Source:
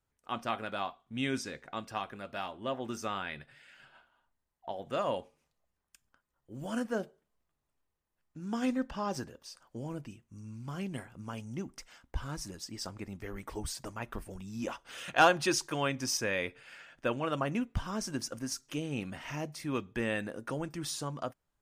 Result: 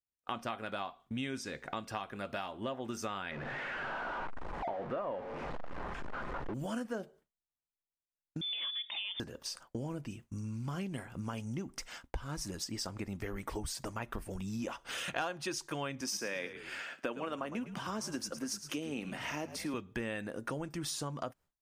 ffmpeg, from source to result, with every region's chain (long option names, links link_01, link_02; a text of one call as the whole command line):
ffmpeg -i in.wav -filter_complex "[0:a]asettb=1/sr,asplit=3[link_01][link_02][link_03];[link_01]atrim=end=3.314[link_04];[link_02]atrim=start=3.31:end=6.54,asetpts=PTS-STARTPTS,afade=type=in:duration=0.004:curve=qsin,afade=type=out:start_time=3.226:duration=0.004:curve=qsin,aeval=exprs='val(0)+0.5*0.0178*sgn(val(0))':channel_layout=same,lowpass=1400,equalizer=frequency=88:width_type=o:width=2:gain=-9.5[link_05];[link_03]atrim=start=6.536[link_06];[link_04][link_05]acrossfade=duration=0.004:curve1=hsin:curve2=qsin[link_07];[link_07][link_06]acrossfade=duration=0.004:curve1=qsin:curve2=hsin,asettb=1/sr,asplit=3[link_08][link_09][link_10];[link_08]atrim=end=8.414[link_11];[link_09]atrim=start=8.41:end=9.2,asetpts=PTS-STARTPTS,afade=type=in:duration=0.004:curve=qsin,afade=type=out:start_time=0.786:duration=0.004:curve=qsin,lowpass=frequency=3100:width_type=q:width=0.5098,lowpass=frequency=3100:width_type=q:width=0.6013,lowpass=frequency=3100:width_type=q:width=0.9,lowpass=frequency=3100:width_type=q:width=2.563,afreqshift=-3700,acompressor=threshold=-40dB:ratio=2:attack=3.2:release=140:knee=1:detection=peak[link_12];[link_10]atrim=start=9.196[link_13];[link_11][link_12]acrossfade=duration=0.004:curve1=hsin:curve2=qsin[link_14];[link_14][link_13]acrossfade=duration=0.004:curve1=qsin:curve2=hsin,asettb=1/sr,asplit=3[link_15][link_16][link_17];[link_15]atrim=end=16.014[link_18];[link_16]atrim=start=16.01:end=19.74,asetpts=PTS-STARTPTS,afade=type=in:duration=0.004:curve=qsin,afade=type=out:start_time=3.726:duration=0.004:curve=qsin,highpass=frequency=190:width=0.5412,highpass=frequency=190:width=1.3066,asplit=4[link_19][link_20][link_21][link_22];[link_20]adelay=108,afreqshift=-57,volume=-13dB[link_23];[link_21]adelay=216,afreqshift=-114,volume=-22.6dB[link_24];[link_22]adelay=324,afreqshift=-171,volume=-32.3dB[link_25];[link_19][link_23][link_24][link_25]amix=inputs=4:normalize=0,atrim=end_sample=164493[link_26];[link_17]atrim=start=19.736[link_27];[link_18][link_26]acrossfade=duration=0.004:curve1=hsin:curve2=qsin[link_28];[link_28][link_27]acrossfade=duration=0.004:curve1=qsin:curve2=hsin,agate=range=-33dB:threshold=-53dB:ratio=3:detection=peak,acompressor=threshold=-48dB:ratio=5,volume=11dB" out.wav